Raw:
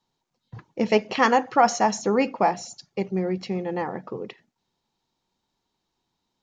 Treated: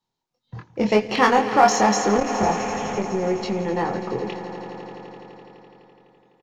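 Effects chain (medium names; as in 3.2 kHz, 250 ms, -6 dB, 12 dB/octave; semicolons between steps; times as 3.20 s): 2.12–3.02 s: one-bit delta coder 16 kbps, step -34.5 dBFS; in parallel at -5 dB: hard clipper -23.5 dBFS, distortion -5 dB; on the sum: doubling 24 ms -4 dB; on a send: echo with a slow build-up 84 ms, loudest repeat 5, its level -16 dB; on the sum: spectral noise reduction 10 dB; transformer saturation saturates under 410 Hz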